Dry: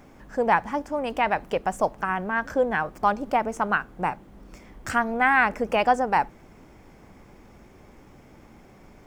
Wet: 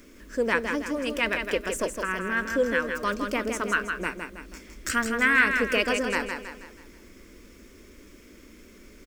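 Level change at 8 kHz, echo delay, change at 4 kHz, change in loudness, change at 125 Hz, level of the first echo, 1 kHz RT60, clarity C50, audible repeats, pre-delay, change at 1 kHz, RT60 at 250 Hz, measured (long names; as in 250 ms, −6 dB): +9.0 dB, 161 ms, +6.0 dB, −1.5 dB, −4.0 dB, −6.0 dB, no reverb audible, no reverb audible, 5, no reverb audible, −9.0 dB, no reverb audible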